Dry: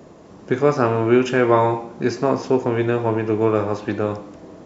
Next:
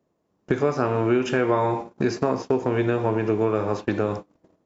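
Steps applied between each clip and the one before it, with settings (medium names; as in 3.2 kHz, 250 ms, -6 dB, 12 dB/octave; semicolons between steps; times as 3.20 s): compression 3:1, threshold -29 dBFS, peak gain reduction 14 dB; gate -35 dBFS, range -35 dB; trim +7 dB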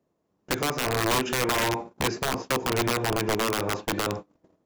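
integer overflow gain 15.5 dB; trim -2.5 dB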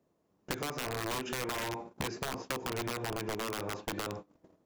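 compression 6:1, threshold -34 dBFS, peak gain reduction 12 dB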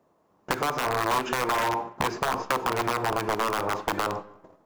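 peaking EQ 990 Hz +11 dB 1.7 oct; reverberation RT60 0.95 s, pre-delay 4 ms, DRR 16.5 dB; trim +4 dB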